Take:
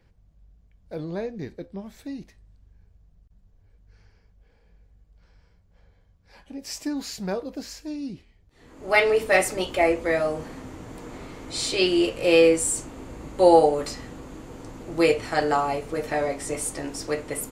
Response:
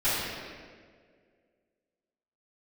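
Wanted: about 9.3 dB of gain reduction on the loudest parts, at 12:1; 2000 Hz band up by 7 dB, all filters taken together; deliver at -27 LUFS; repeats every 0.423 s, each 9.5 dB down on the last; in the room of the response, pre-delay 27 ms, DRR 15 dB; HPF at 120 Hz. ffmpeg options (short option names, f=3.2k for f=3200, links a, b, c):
-filter_complex "[0:a]highpass=120,equalizer=f=2k:t=o:g=8,acompressor=threshold=-18dB:ratio=12,aecho=1:1:423|846|1269|1692:0.335|0.111|0.0365|0.012,asplit=2[a][b];[1:a]atrim=start_sample=2205,adelay=27[c];[b][c]afir=irnorm=-1:irlink=0,volume=-28.5dB[d];[a][d]amix=inputs=2:normalize=0,volume=-0.5dB"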